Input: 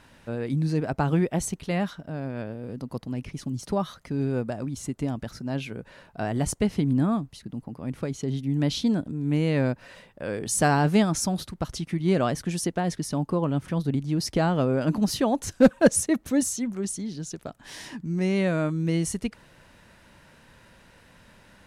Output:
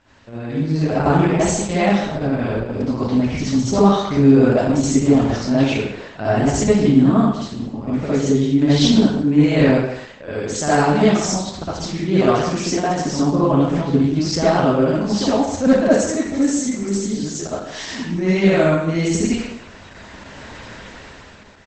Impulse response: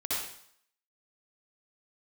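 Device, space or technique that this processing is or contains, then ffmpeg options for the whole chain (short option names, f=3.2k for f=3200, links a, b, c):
speakerphone in a meeting room: -filter_complex "[1:a]atrim=start_sample=2205[a];[0:a][a]afir=irnorm=-1:irlink=0,asplit=2[b][c];[c]adelay=140,highpass=300,lowpass=3.4k,asoftclip=type=hard:threshold=-10dB,volume=-10dB[d];[b][d]amix=inputs=2:normalize=0,dynaudnorm=f=150:g=11:m=15dB,volume=-1dB" -ar 48000 -c:a libopus -b:a 12k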